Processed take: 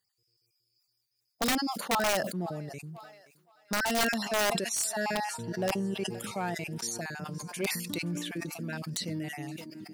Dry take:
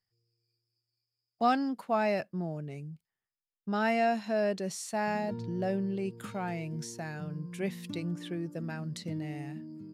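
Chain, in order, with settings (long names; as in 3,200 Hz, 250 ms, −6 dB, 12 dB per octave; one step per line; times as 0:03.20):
time-frequency cells dropped at random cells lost 28%
in parallel at −8 dB: gain into a clipping stage and back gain 28.5 dB
on the sum: high-pass filter 170 Hz 6 dB per octave
high-shelf EQ 4,200 Hz +10.5 dB
on a send: feedback echo with a high-pass in the loop 522 ms, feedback 56%, high-pass 570 Hz, level −22.5 dB
on the sum: wrap-around overflow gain 21 dB
level that may fall only so fast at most 50 dB per second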